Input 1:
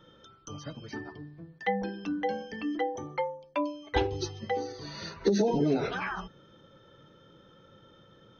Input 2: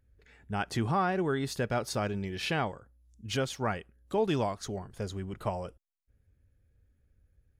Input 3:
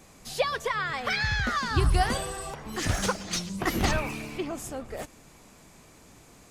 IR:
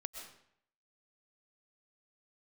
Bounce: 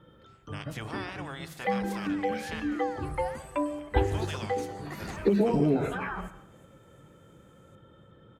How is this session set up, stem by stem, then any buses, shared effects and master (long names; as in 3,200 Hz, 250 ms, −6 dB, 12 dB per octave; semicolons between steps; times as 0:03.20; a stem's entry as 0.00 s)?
−2.5 dB, 0.00 s, send −4.5 dB, no echo send, Gaussian smoothing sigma 2.7 samples; low-shelf EQ 94 Hz +11.5 dB
−14.0 dB, 0.00 s, muted 0:02.60–0:03.79, send −4 dB, no echo send, ceiling on every frequency bin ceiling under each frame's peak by 25 dB
−15.0 dB, 1.25 s, no send, echo send −15.5 dB, flat-topped bell 4,200 Hz −8 dB 1.1 octaves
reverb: on, RT60 0.70 s, pre-delay 85 ms
echo: repeating echo 356 ms, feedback 57%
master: high-pass filter 44 Hz